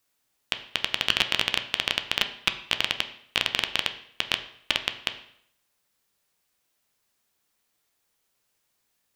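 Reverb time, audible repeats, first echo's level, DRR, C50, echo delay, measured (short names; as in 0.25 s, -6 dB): 0.65 s, none, none, 7.0 dB, 12.0 dB, none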